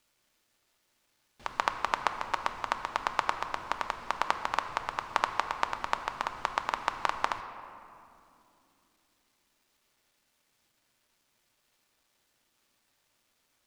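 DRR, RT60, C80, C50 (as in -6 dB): 6.5 dB, 2.7 s, 10.0 dB, 9.0 dB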